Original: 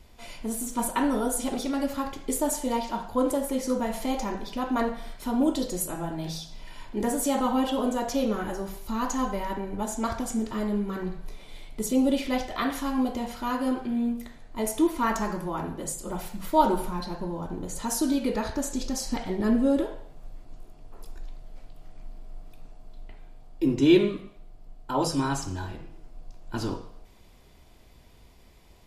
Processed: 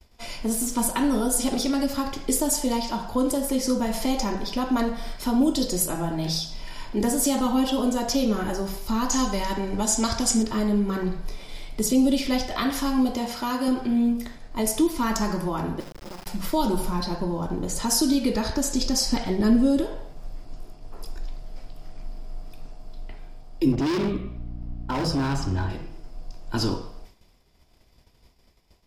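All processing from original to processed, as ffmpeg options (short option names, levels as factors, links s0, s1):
-filter_complex "[0:a]asettb=1/sr,asplit=3[s0][s1][s2];[s0]atrim=end=9.124[s3];[s1]atrim=start=9.12:end=10.43,asetpts=PTS-STARTPTS,afade=t=in:d=0.004:c=qsin,afade=t=out:st=1.306:d=0.004:c=qsin,lowpass=8700,highshelf=f=3200:g=10.5[s4];[s2]atrim=start=10.426[s5];[s3][s4]acrossfade=d=0.004:c1=hsin:c2=qsin[s6];[s6][s5]acrossfade=d=0.004:c1=qsin:c2=hsin,asettb=1/sr,asplit=3[s7][s8][s9];[s7]atrim=end=13.134[s10];[s8]atrim=start=13.13:end=13.68,asetpts=PTS-STARTPTS,afade=t=in:d=0.004:c=qsin,afade=t=out:st=0.546:d=0.004:c=qsin,highpass=f=67:p=1,bass=f=250:g=-3,treble=f=4000:g=1[s11];[s9]atrim=start=13.676[s12];[s10][s11]acrossfade=d=0.004:c1=hsin:c2=qsin[s13];[s13][s12]acrossfade=d=0.004:c1=qsin:c2=hsin,asettb=1/sr,asplit=3[s14][s15][s16];[s14]atrim=end=15.804[s17];[s15]atrim=start=15.8:end=16.27,asetpts=PTS-STARTPTS,afade=t=in:d=0.004:c=qsin,afade=t=out:st=0.466:d=0.004:c=qsin,lowpass=f=1800:w=0.5412,lowpass=f=1800:w=1.3066,acompressor=threshold=0.0126:ratio=6:attack=3.2:release=140:knee=1:detection=peak,acrusher=bits=5:dc=4:mix=0:aa=0.000001[s18];[s16]atrim=start=16.266[s19];[s17][s18]acrossfade=d=0.004:c1=hsin:c2=qsin[s20];[s20][s19]acrossfade=d=0.004:c1=qsin:c2=hsin,asettb=1/sr,asplit=3[s21][s22][s23];[s21]atrim=end=23.724[s24];[s22]atrim=start=23.72:end=25.7,asetpts=PTS-STARTPTS,afade=t=in:d=0.004:c=qsin,afade=t=out:st=1.976:d=0.004:c=qsin,bass=f=250:g=3,treble=f=4000:g=-12,aeval=exprs='val(0)+0.00891*(sin(2*PI*60*n/s)+sin(2*PI*2*60*n/s)/2+sin(2*PI*3*60*n/s)/3+sin(2*PI*4*60*n/s)/4+sin(2*PI*5*60*n/s)/5)':c=same,volume=20,asoftclip=hard,volume=0.0501[s25];[s23]atrim=start=25.696[s26];[s24][s25]acrossfade=d=0.004:c1=hsin:c2=qsin[s27];[s27][s26]acrossfade=d=0.004:c1=qsin:c2=hsin,agate=range=0.0224:threshold=0.00631:ratio=3:detection=peak,equalizer=f=5100:t=o:w=0.22:g=10,acrossover=split=280|3000[s28][s29][s30];[s29]acompressor=threshold=0.02:ratio=3[s31];[s28][s31][s30]amix=inputs=3:normalize=0,volume=2"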